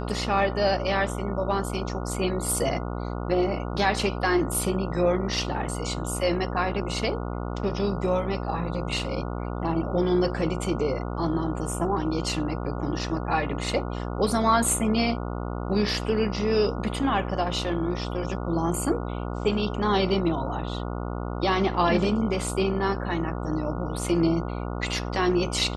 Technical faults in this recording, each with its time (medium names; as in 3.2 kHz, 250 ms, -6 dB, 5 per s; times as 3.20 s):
buzz 60 Hz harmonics 24 -31 dBFS